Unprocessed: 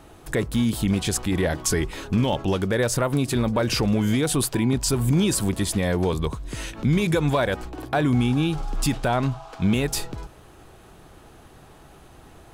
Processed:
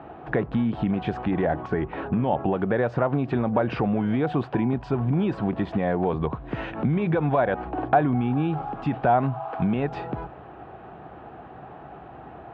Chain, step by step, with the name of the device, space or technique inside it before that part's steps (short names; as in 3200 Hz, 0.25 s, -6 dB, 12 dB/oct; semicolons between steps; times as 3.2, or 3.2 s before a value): bass amplifier (compressor 4:1, threshold -26 dBFS, peak gain reduction 9 dB; speaker cabinet 69–2300 Hz, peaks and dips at 92 Hz -10 dB, 740 Hz +9 dB, 2100 Hz -5 dB); 1.45–2.59 high shelf 3600 Hz -9 dB; gain +5.5 dB